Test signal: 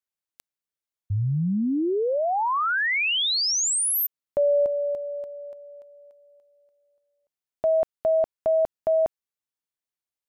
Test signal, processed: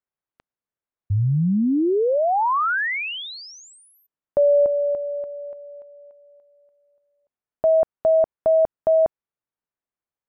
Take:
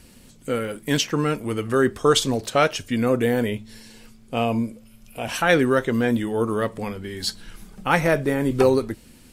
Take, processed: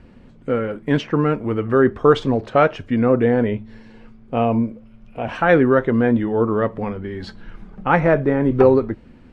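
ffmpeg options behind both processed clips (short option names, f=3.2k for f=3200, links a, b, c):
-af "lowpass=1.6k,volume=4.5dB"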